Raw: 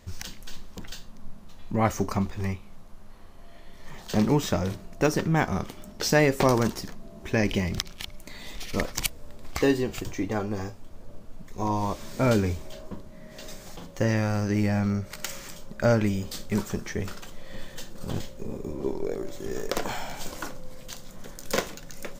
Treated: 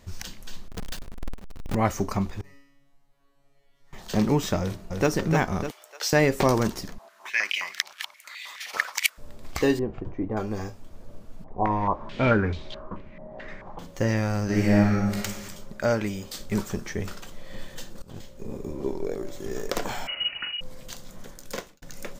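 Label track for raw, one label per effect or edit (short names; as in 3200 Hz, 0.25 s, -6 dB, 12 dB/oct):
0.680000	1.750000	half-waves squared off
2.410000	3.930000	resonator 140 Hz, decay 0.9 s, mix 100%
4.600000	5.090000	echo throw 0.3 s, feedback 45%, level -4 dB
5.710000	6.130000	Bessel high-pass 810 Hz, order 8
6.980000	9.180000	stepped high-pass 9.5 Hz 840–2400 Hz
9.790000	10.370000	LPF 1000 Hz
11.440000	13.790000	stepped low-pass 4.6 Hz 780–3800 Hz
14.440000	15.150000	reverb throw, RT60 1.2 s, DRR -4 dB
15.780000	16.410000	low shelf 230 Hz -8.5 dB
18.020000	18.550000	fade in, from -21.5 dB
20.070000	20.610000	inverted band carrier 2900 Hz
21.180000	21.820000	fade out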